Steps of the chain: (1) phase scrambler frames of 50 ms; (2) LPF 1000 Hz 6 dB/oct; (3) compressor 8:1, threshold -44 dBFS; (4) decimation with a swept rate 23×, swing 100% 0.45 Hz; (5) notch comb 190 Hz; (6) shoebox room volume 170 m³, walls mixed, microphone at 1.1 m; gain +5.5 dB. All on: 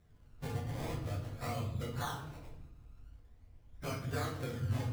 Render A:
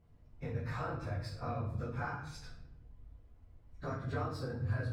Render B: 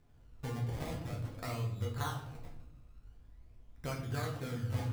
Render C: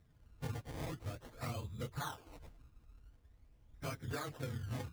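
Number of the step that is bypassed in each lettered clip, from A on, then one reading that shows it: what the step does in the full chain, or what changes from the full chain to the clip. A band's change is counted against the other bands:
4, 8 kHz band -10.0 dB; 1, 125 Hz band +1.5 dB; 6, momentary loudness spread change -3 LU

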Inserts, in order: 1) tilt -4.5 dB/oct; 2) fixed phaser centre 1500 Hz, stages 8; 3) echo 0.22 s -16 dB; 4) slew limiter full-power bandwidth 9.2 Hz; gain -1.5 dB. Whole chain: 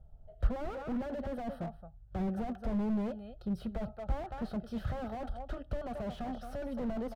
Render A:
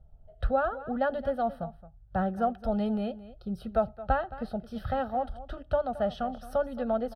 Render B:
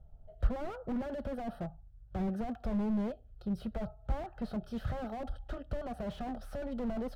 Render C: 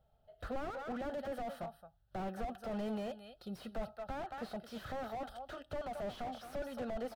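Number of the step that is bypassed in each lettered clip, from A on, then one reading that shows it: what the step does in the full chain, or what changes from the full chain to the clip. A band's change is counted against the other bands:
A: 4, momentary loudness spread change +2 LU; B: 3, momentary loudness spread change +1 LU; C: 1, 125 Hz band -11.0 dB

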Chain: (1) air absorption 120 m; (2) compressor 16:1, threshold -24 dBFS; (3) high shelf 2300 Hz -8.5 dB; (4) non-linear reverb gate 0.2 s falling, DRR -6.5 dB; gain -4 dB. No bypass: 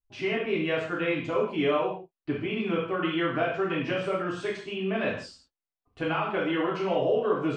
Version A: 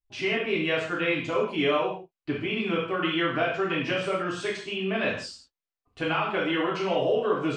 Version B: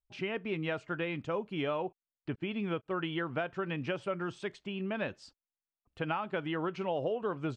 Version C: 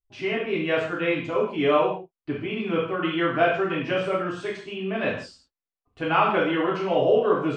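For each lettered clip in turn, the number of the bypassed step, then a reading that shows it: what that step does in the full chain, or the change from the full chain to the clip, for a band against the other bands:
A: 3, 4 kHz band +5.0 dB; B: 4, momentary loudness spread change -2 LU; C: 2, mean gain reduction 2.5 dB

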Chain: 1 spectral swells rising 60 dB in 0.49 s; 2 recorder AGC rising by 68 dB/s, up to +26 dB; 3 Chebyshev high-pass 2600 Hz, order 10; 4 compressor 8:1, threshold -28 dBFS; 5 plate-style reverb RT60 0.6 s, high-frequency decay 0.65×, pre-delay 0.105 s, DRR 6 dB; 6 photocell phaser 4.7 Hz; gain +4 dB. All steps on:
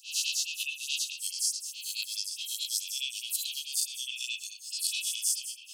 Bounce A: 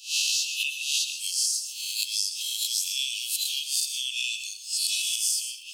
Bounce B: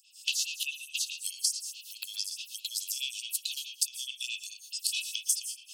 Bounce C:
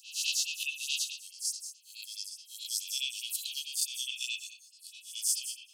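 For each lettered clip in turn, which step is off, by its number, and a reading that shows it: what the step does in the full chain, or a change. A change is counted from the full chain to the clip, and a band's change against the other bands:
6, momentary loudness spread change -1 LU; 1, crest factor change +4.5 dB; 2, momentary loudness spread change +8 LU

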